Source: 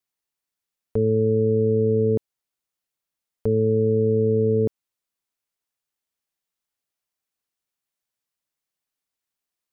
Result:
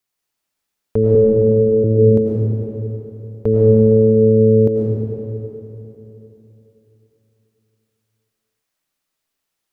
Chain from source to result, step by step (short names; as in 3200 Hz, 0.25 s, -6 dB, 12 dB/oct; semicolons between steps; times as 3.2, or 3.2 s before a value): 1.15–1.84 HPF 320 Hz 12 dB/oct; reverb RT60 3.4 s, pre-delay 65 ms, DRR -3 dB; gain +5.5 dB